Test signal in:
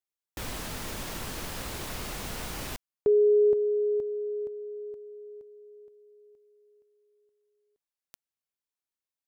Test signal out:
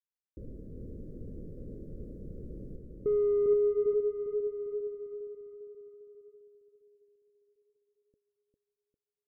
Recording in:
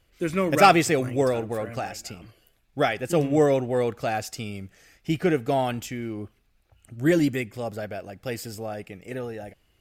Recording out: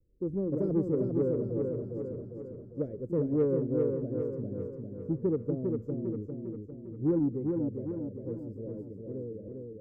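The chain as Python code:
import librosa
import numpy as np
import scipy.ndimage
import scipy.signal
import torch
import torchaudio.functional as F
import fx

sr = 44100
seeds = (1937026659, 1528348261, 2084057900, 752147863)

p1 = scipy.signal.sosfilt(scipy.signal.cheby2(6, 40, 720.0, 'lowpass', fs=sr, output='sos'), x)
p2 = 10.0 ** (-20.0 / 20.0) * np.tanh(p1 / 10.0 ** (-20.0 / 20.0))
p3 = p1 + (p2 * 10.0 ** (-4.5 / 20.0))
p4 = fx.vibrato(p3, sr, rate_hz=0.81, depth_cents=29.0)
p5 = fx.echo_feedback(p4, sr, ms=401, feedback_pct=53, wet_db=-4.0)
y = p5 * 10.0 ** (-9.0 / 20.0)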